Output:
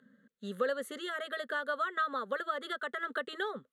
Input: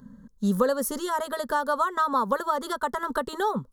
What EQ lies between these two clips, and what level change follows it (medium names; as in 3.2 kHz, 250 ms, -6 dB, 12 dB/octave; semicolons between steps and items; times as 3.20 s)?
band-pass 480–3000 Hz; treble shelf 2.2 kHz +11.5 dB; static phaser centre 2.3 kHz, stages 4; -2.5 dB